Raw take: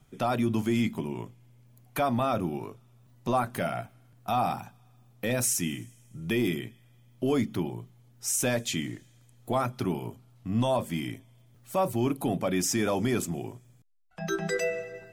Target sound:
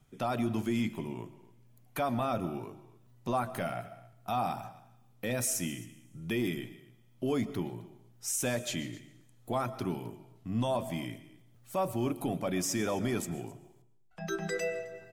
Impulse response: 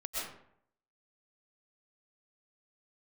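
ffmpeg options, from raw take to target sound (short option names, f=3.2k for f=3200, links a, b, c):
-filter_complex "[0:a]aecho=1:1:263:0.0841,asplit=2[a][b];[1:a]atrim=start_sample=2205[c];[b][c]afir=irnorm=-1:irlink=0,volume=-16dB[d];[a][d]amix=inputs=2:normalize=0,volume=-5.5dB"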